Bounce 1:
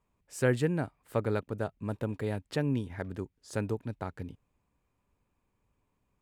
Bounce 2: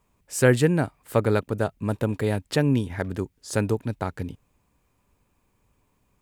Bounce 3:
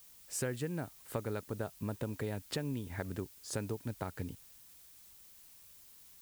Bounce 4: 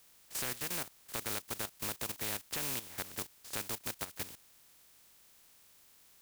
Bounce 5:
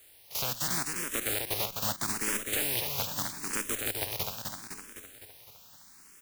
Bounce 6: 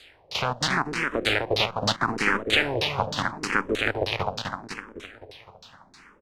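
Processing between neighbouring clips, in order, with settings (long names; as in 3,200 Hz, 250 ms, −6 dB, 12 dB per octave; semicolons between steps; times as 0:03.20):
high-shelf EQ 4,800 Hz +6 dB; level +8.5 dB
downward compressor 6 to 1, threshold −27 dBFS, peak gain reduction 14 dB; background noise blue −51 dBFS; level −7 dB
compressing power law on the bin magnitudes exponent 0.27; output level in coarse steps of 13 dB; level +2.5 dB
repeating echo 255 ms, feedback 58%, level −4 dB; frequency shifter mixed with the dry sound +0.78 Hz; level +8.5 dB
auto-filter low-pass saw down 3.2 Hz 410–4,700 Hz; wow of a warped record 45 rpm, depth 100 cents; level +9 dB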